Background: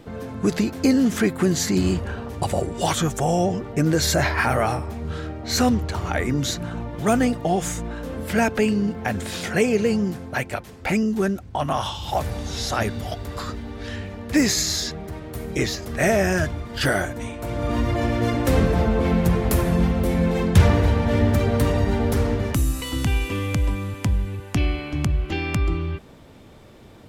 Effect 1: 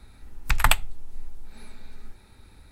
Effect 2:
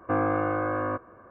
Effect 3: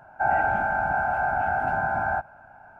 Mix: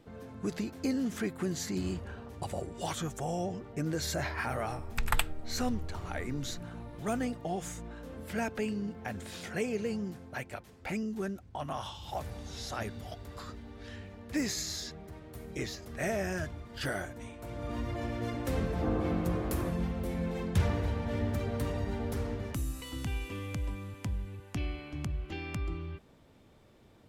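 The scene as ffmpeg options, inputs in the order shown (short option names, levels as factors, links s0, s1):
-filter_complex "[0:a]volume=0.211[s0];[2:a]bandpass=f=170:t=q:w=0.82:csg=0[s1];[1:a]atrim=end=2.71,asetpts=PTS-STARTPTS,volume=0.335,afade=t=in:d=0.004:c=hsin,afade=t=out:st=2.706:d=0.004:c=hsin,adelay=4480[s2];[s1]atrim=end=1.3,asetpts=PTS-STARTPTS,volume=0.794,afade=t=in:d=0.004:c=hsin,afade=t=out:st=1.296:d=0.004:c=hsin,adelay=18730[s3];[s0][s2][s3]amix=inputs=3:normalize=0"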